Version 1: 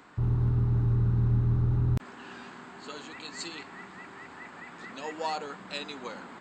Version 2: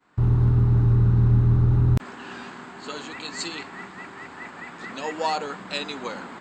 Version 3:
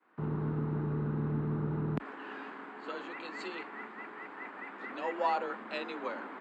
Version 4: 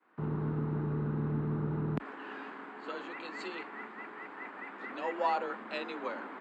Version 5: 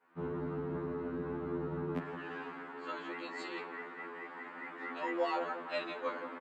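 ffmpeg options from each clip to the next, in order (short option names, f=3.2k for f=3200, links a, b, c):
-af "agate=range=-33dB:threshold=-44dB:ratio=3:detection=peak,volume=7dB"
-filter_complex "[0:a]acrossover=split=170 2800:gain=0.0794 1 0.0794[a][b][c];[a][b][c]amix=inputs=3:normalize=0,afreqshift=31,volume=-4.5dB"
-af anull
-filter_complex "[0:a]asplit=2[a][b];[b]adelay=172,lowpass=f=1.7k:p=1,volume=-10dB,asplit=2[c][d];[d]adelay=172,lowpass=f=1.7k:p=1,volume=0.52,asplit=2[e][f];[f]adelay=172,lowpass=f=1.7k:p=1,volume=0.52,asplit=2[g][h];[h]adelay=172,lowpass=f=1.7k:p=1,volume=0.52,asplit=2[i][j];[j]adelay=172,lowpass=f=1.7k:p=1,volume=0.52,asplit=2[k][l];[l]adelay=172,lowpass=f=1.7k:p=1,volume=0.52[m];[a][c][e][g][i][k][m]amix=inputs=7:normalize=0,afftfilt=real='re*2*eq(mod(b,4),0)':imag='im*2*eq(mod(b,4),0)':win_size=2048:overlap=0.75,volume=1.5dB"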